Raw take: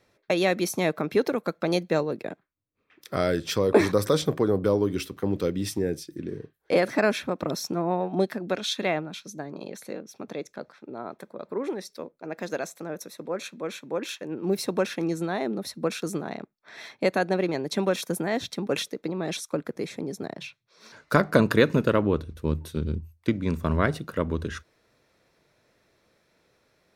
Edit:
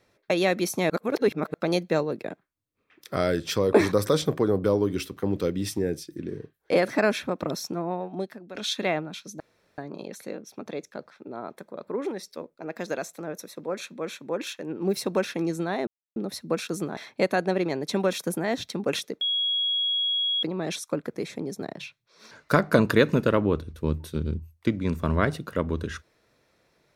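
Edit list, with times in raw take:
0.90–1.54 s: reverse
7.39–8.55 s: fade out, to -15 dB
9.40 s: insert room tone 0.38 s
15.49 s: insert silence 0.29 s
16.30–16.80 s: delete
19.04 s: add tone 3.32 kHz -22.5 dBFS 1.22 s

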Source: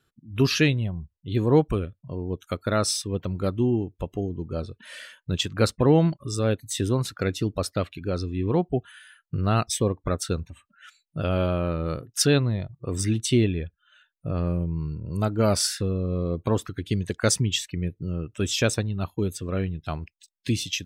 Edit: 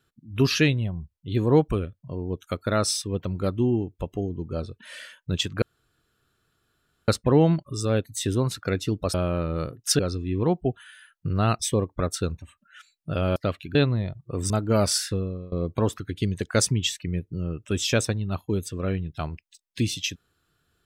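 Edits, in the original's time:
5.62 s: insert room tone 1.46 s
7.68–8.07 s: swap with 11.44–12.29 s
13.04–15.19 s: delete
15.83–16.21 s: fade out linear, to -23 dB

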